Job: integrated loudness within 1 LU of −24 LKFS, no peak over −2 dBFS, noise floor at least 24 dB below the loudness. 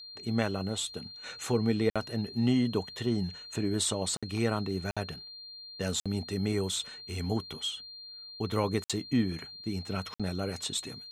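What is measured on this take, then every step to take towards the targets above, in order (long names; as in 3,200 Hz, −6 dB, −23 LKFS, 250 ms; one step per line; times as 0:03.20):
number of dropouts 6; longest dropout 56 ms; interfering tone 4,200 Hz; level of the tone −44 dBFS; integrated loudness −32.0 LKFS; sample peak −12.5 dBFS; target loudness −24.0 LKFS
→ repair the gap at 0:01.90/0:04.17/0:04.91/0:06.00/0:08.84/0:10.14, 56 ms
notch filter 4,200 Hz, Q 30
level +8 dB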